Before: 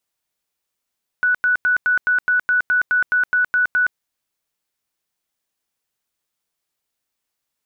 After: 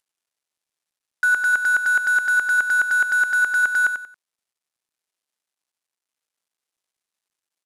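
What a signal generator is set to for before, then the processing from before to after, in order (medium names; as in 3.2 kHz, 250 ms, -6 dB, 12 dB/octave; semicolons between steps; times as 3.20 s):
tone bursts 1.48 kHz, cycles 172, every 0.21 s, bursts 13, -13.5 dBFS
CVSD coder 64 kbps; bass shelf 220 Hz -8.5 dB; on a send: feedback delay 92 ms, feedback 29%, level -8 dB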